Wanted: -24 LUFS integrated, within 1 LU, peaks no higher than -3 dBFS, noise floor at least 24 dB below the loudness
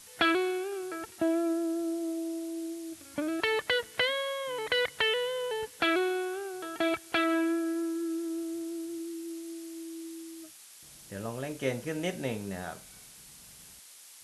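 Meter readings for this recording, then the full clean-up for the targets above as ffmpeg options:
noise floor -52 dBFS; noise floor target -56 dBFS; loudness -32.0 LUFS; peak -14.5 dBFS; loudness target -24.0 LUFS
-> -af "afftdn=nr=6:nf=-52"
-af "volume=8dB"

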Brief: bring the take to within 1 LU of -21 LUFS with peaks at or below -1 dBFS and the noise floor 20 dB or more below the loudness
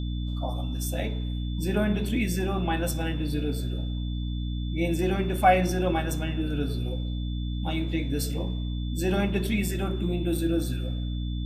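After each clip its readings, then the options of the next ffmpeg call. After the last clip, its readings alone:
hum 60 Hz; harmonics up to 300 Hz; hum level -27 dBFS; steady tone 3500 Hz; tone level -45 dBFS; loudness -28.0 LUFS; peak -8.0 dBFS; loudness target -21.0 LUFS
-> -af "bandreject=f=60:t=h:w=6,bandreject=f=120:t=h:w=6,bandreject=f=180:t=h:w=6,bandreject=f=240:t=h:w=6,bandreject=f=300:t=h:w=6"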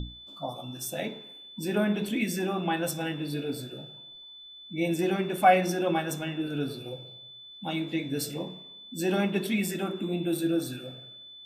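hum none; steady tone 3500 Hz; tone level -45 dBFS
-> -af "bandreject=f=3.5k:w=30"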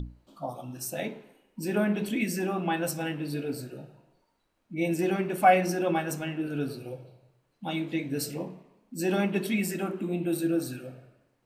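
steady tone none; loudness -29.5 LUFS; peak -8.0 dBFS; loudness target -21.0 LUFS
-> -af "volume=8.5dB,alimiter=limit=-1dB:level=0:latency=1"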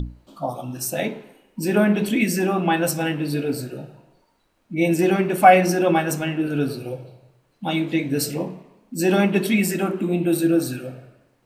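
loudness -21.0 LUFS; peak -1.0 dBFS; noise floor -64 dBFS

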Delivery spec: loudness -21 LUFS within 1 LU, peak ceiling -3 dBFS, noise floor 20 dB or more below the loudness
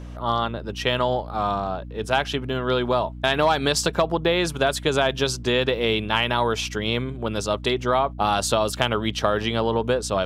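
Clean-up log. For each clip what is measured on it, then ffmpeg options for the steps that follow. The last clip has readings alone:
hum 60 Hz; harmonics up to 300 Hz; hum level -34 dBFS; loudness -23.0 LUFS; peak -3.0 dBFS; loudness target -21.0 LUFS
-> -af "bandreject=f=60:t=h:w=6,bandreject=f=120:t=h:w=6,bandreject=f=180:t=h:w=6,bandreject=f=240:t=h:w=6,bandreject=f=300:t=h:w=6"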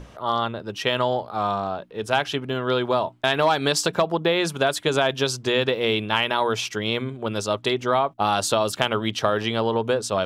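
hum none; loudness -23.0 LUFS; peak -3.0 dBFS; loudness target -21.0 LUFS
-> -af "volume=2dB,alimiter=limit=-3dB:level=0:latency=1"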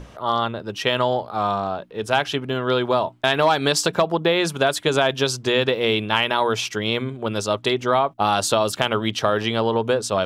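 loudness -21.5 LUFS; peak -3.0 dBFS; noise floor -42 dBFS

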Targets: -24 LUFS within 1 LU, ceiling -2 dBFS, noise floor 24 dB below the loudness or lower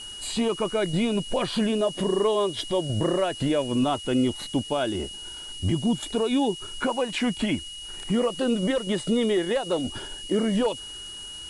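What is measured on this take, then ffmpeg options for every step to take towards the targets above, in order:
steady tone 2900 Hz; tone level -37 dBFS; noise floor -39 dBFS; noise floor target -50 dBFS; loudness -26.0 LUFS; peak -14.0 dBFS; loudness target -24.0 LUFS
-> -af "bandreject=f=2.9k:w=30"
-af "afftdn=nr=11:nf=-39"
-af "volume=2dB"

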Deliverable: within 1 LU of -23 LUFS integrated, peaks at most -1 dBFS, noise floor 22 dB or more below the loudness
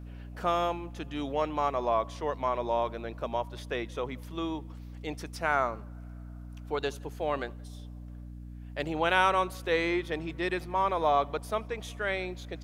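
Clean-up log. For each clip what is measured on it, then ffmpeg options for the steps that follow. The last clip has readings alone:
hum 60 Hz; harmonics up to 300 Hz; hum level -41 dBFS; loudness -31.0 LUFS; peak -9.5 dBFS; loudness target -23.0 LUFS
-> -af "bandreject=f=60:t=h:w=4,bandreject=f=120:t=h:w=4,bandreject=f=180:t=h:w=4,bandreject=f=240:t=h:w=4,bandreject=f=300:t=h:w=4"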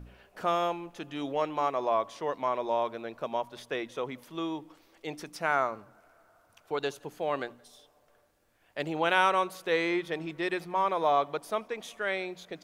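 hum none; loudness -31.0 LUFS; peak -9.5 dBFS; loudness target -23.0 LUFS
-> -af "volume=8dB"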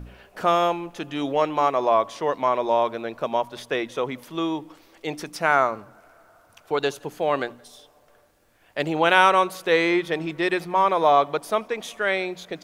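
loudness -23.0 LUFS; peak -1.5 dBFS; noise floor -58 dBFS

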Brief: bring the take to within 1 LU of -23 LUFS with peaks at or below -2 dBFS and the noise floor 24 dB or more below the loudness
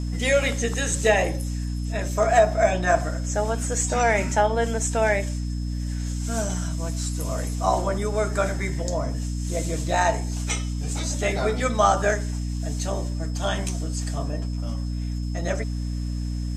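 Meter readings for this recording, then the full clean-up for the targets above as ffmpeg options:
hum 60 Hz; harmonics up to 300 Hz; hum level -25 dBFS; steady tone 5200 Hz; tone level -48 dBFS; loudness -25.0 LUFS; peak -4.5 dBFS; loudness target -23.0 LUFS
-> -af "bandreject=f=60:t=h:w=4,bandreject=f=120:t=h:w=4,bandreject=f=180:t=h:w=4,bandreject=f=240:t=h:w=4,bandreject=f=300:t=h:w=4"
-af "bandreject=f=5.2k:w=30"
-af "volume=2dB"

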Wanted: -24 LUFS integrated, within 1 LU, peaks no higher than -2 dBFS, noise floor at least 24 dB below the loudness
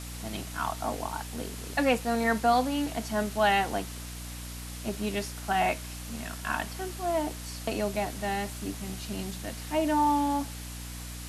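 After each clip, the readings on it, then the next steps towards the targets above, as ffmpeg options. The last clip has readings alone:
hum 60 Hz; harmonics up to 300 Hz; hum level -39 dBFS; noise floor -40 dBFS; noise floor target -55 dBFS; loudness -30.5 LUFS; peak -12.0 dBFS; loudness target -24.0 LUFS
-> -af "bandreject=f=60:t=h:w=6,bandreject=f=120:t=h:w=6,bandreject=f=180:t=h:w=6,bandreject=f=240:t=h:w=6,bandreject=f=300:t=h:w=6"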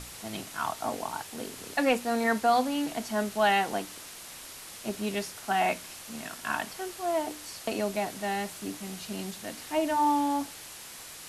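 hum none; noise floor -45 dBFS; noise floor target -55 dBFS
-> -af "afftdn=nr=10:nf=-45"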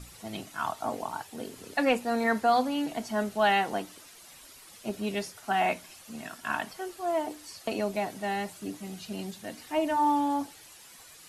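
noise floor -52 dBFS; noise floor target -55 dBFS
-> -af "afftdn=nr=6:nf=-52"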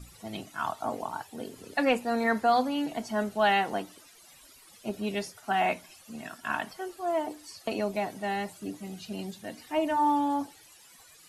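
noise floor -55 dBFS; loudness -30.0 LUFS; peak -12.5 dBFS; loudness target -24.0 LUFS
-> -af "volume=6dB"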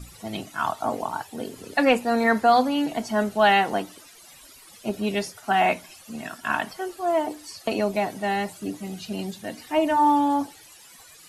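loudness -24.0 LUFS; peak -6.5 dBFS; noise floor -49 dBFS

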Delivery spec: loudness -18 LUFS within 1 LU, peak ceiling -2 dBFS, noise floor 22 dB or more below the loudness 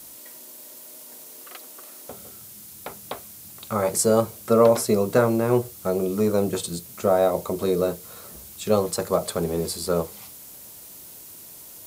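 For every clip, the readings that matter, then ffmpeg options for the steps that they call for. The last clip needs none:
noise floor -44 dBFS; noise floor target -45 dBFS; loudness -23.0 LUFS; peak -5.5 dBFS; loudness target -18.0 LUFS
-> -af "afftdn=nr=6:nf=-44"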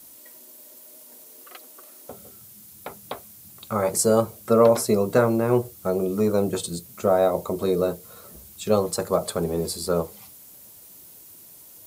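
noise floor -47 dBFS; loudness -23.0 LUFS; peak -5.5 dBFS; loudness target -18.0 LUFS
-> -af "volume=5dB,alimiter=limit=-2dB:level=0:latency=1"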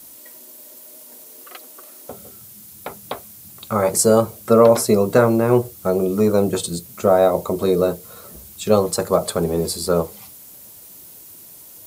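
loudness -18.0 LUFS; peak -2.0 dBFS; noise floor -42 dBFS

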